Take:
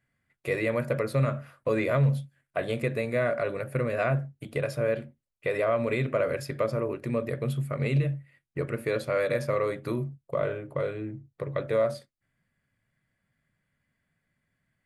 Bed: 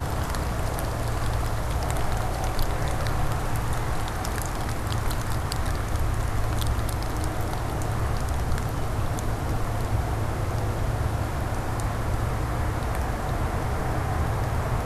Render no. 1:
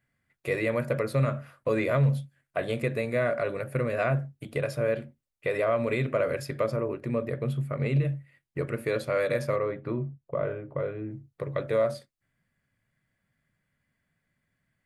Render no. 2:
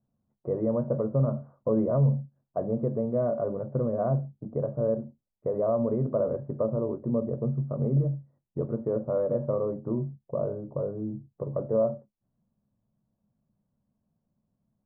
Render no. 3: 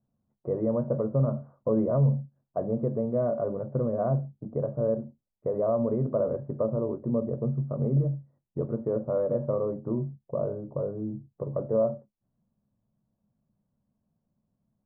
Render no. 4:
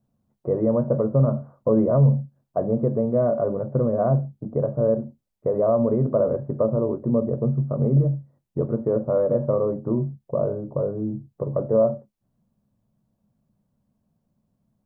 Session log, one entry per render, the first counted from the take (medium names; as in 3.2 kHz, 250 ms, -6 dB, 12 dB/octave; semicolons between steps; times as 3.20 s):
6.76–8.05 s: treble shelf 3.5 kHz -8 dB; 9.56–11.11 s: distance through air 450 m
steep low-pass 1 kHz 36 dB/octave; peaking EQ 210 Hz +11 dB 0.24 oct
no audible change
trim +6 dB